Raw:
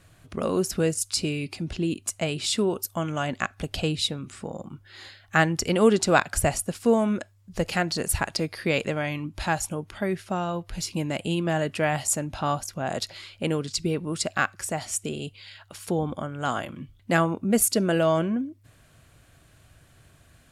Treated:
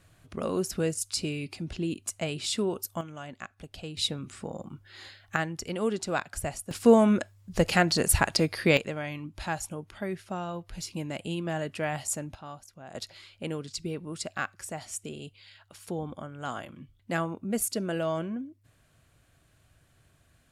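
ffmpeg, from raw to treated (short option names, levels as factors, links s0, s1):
-af "asetnsamples=n=441:p=0,asendcmd='3.01 volume volume -13.5dB;3.97 volume volume -2.5dB;5.36 volume volume -10dB;6.71 volume volume 2.5dB;8.77 volume volume -6.5dB;12.35 volume volume -17dB;12.95 volume volume -8dB',volume=0.596"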